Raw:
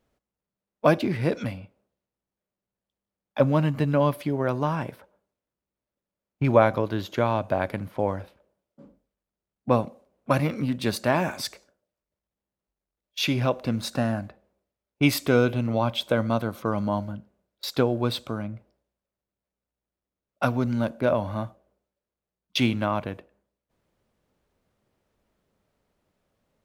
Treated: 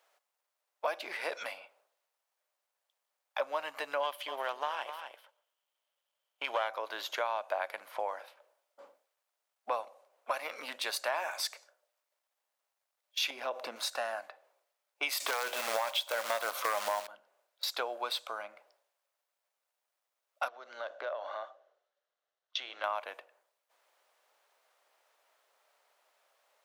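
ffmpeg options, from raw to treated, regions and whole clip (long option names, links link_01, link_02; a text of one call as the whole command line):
ffmpeg -i in.wav -filter_complex "[0:a]asettb=1/sr,asplit=3[link_01][link_02][link_03];[link_01]atrim=end=4.034[link_04];[link_02]atrim=start=4.03:end=6.69,asetpts=PTS-STARTPTS,afade=type=in:duration=0.004:curve=qsin,afade=type=out:start_time=2.656:duration=0.004:curve=qsin,aeval=exprs='if(lt(val(0),0),0.447*val(0),val(0))':channel_layout=same,equalizer=frequency=3100:width_type=o:width=0.26:gain=13.5,aecho=1:1:249:0.2,atrim=end_sample=117306[link_05];[link_03]atrim=start=6.686[link_06];[link_04][link_05]acrossfade=duration=0.004:curve1=hsin:curve2=qsin[link_07];[link_07][link_06]acrossfade=duration=0.004:curve1=qsin:curve2=hsin,asettb=1/sr,asplit=3[link_08][link_09][link_10];[link_08]atrim=end=13.304[link_11];[link_09]atrim=start=13.3:end=13.76,asetpts=PTS-STARTPTS,afade=type=in:duration=0.004:curve=qsin,afade=type=out:start_time=0.456:duration=0.004:curve=qsin,equalizer=frequency=200:width_type=o:width=2.3:gain=14,acompressor=threshold=-17dB:ratio=6:attack=3.2:release=140:knee=1:detection=peak[link_12];[link_10]atrim=start=13.756[link_13];[link_11][link_12]acrossfade=duration=0.004:curve1=hsin:curve2=qsin[link_14];[link_14][link_13]acrossfade=duration=0.004:curve1=qsin:curve2=hsin,asettb=1/sr,asplit=3[link_15][link_16][link_17];[link_15]atrim=end=15.204[link_18];[link_16]atrim=start=15.2:end=17.07,asetpts=PTS-STARTPTS,afade=type=in:duration=0.004:curve=qsin,afade=type=out:start_time=1.866:duration=0.004:curve=qsin,acrusher=bits=3:mode=log:mix=0:aa=0.000001,aeval=exprs='0.473*sin(PI/2*2.51*val(0)/0.473)':channel_layout=same[link_19];[link_17]atrim=start=17.066[link_20];[link_18][link_19]acrossfade=duration=0.004:curve1=hsin:curve2=qsin[link_21];[link_21][link_20]acrossfade=duration=0.004:curve1=qsin:curve2=hsin,asettb=1/sr,asplit=3[link_22][link_23][link_24];[link_22]atrim=end=20.484[link_25];[link_23]atrim=start=20.48:end=22.84,asetpts=PTS-STARTPTS,afade=type=in:duration=0.004:curve=qsin,afade=type=out:start_time=2.356:duration=0.004:curve=qsin,acompressor=threshold=-26dB:ratio=6:attack=3.2:release=140:knee=1:detection=peak,highpass=frequency=310:width=0.5412,highpass=frequency=310:width=1.3066,equalizer=frequency=930:width_type=q:width=4:gain=-8,equalizer=frequency=2400:width_type=q:width=4:gain=-9,equalizer=frequency=4800:width_type=q:width=4:gain=-7,lowpass=frequency=5300:width=0.5412,lowpass=frequency=5300:width=1.3066[link_26];[link_24]atrim=start=22.836[link_27];[link_25][link_26]acrossfade=duration=0.004:curve1=hsin:curve2=qsin[link_28];[link_28][link_27]acrossfade=duration=0.004:curve1=qsin:curve2=hsin,highpass=frequency=650:width=0.5412,highpass=frequency=650:width=1.3066,alimiter=limit=-15dB:level=0:latency=1:release=320,acompressor=threshold=-48dB:ratio=2,volume=7.5dB" out.wav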